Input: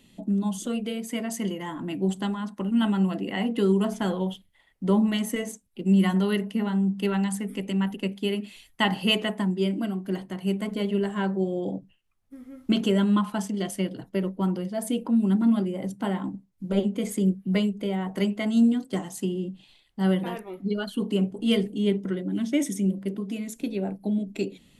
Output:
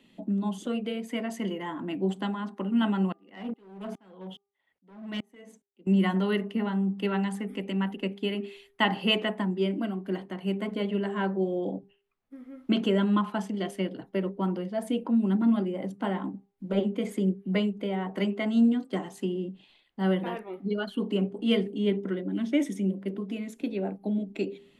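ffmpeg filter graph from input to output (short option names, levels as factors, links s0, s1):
-filter_complex "[0:a]asettb=1/sr,asplit=3[s0][s1][s2];[s0]atrim=end=3.124[s3];[s1]atrim=start=3.12:end=5.87,asetpts=PTS-STARTPTS,afade=t=in:d=0.004:c=qsin,afade=t=out:st=2.746:d=0.004:c=qsin,highpass=49,volume=12.6,asoftclip=hard,volume=0.0794,aeval=exprs='val(0)*pow(10,-36*if(lt(mod(-2.4*n/s,1),2*abs(-2.4)/1000),1-mod(-2.4*n/s,1)/(2*abs(-2.4)/1000),(mod(-2.4*n/s,1)-2*abs(-2.4)/1000)/(1-2*abs(-2.4)/1000))/20)':c=same[s4];[s2]atrim=start=5.866[s5];[s3][s4]acrossfade=d=0.004:c1=hsin:c2=qsin[s6];[s6][s5]acrossfade=d=0.004:c1=qsin:c2=hsin,acrossover=split=180 3700:gain=0.224 1 0.224[s7][s8][s9];[s7][s8][s9]amix=inputs=3:normalize=0,bandreject=f=399.7:t=h:w=4,bandreject=f=799.4:t=h:w=4,bandreject=f=1199.1:t=h:w=4"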